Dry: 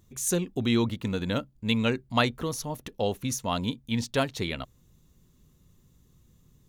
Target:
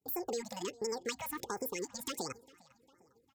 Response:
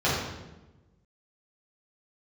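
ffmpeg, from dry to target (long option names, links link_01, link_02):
-filter_complex "[0:a]highpass=43,aecho=1:1:4.8:0.42,acrossover=split=300|860|3400[link_01][link_02][link_03][link_04];[link_02]volume=36dB,asoftclip=hard,volume=-36dB[link_05];[link_01][link_05][link_03][link_04]amix=inputs=4:normalize=0,acompressor=threshold=-35dB:ratio=5,agate=range=-33dB:threshold=-49dB:ratio=3:detection=peak,asplit=2[link_06][link_07];[link_07]adelay=805,lowpass=frequency=3000:poles=1,volume=-22dB,asplit=2[link_08][link_09];[link_09]adelay=805,lowpass=frequency=3000:poles=1,volume=0.54,asplit=2[link_10][link_11];[link_11]adelay=805,lowpass=frequency=3000:poles=1,volume=0.54,asplit=2[link_12][link_13];[link_13]adelay=805,lowpass=frequency=3000:poles=1,volume=0.54[link_14];[link_06][link_08][link_10][link_12][link_14]amix=inputs=5:normalize=0,asetrate=88200,aresample=44100,afftfilt=real='re*(1-between(b*sr/1024,340*pow(3600/340,0.5+0.5*sin(2*PI*1.4*pts/sr))/1.41,340*pow(3600/340,0.5+0.5*sin(2*PI*1.4*pts/sr))*1.41))':imag='im*(1-between(b*sr/1024,340*pow(3600/340,0.5+0.5*sin(2*PI*1.4*pts/sr))/1.41,340*pow(3600/340,0.5+0.5*sin(2*PI*1.4*pts/sr))*1.41))':win_size=1024:overlap=0.75"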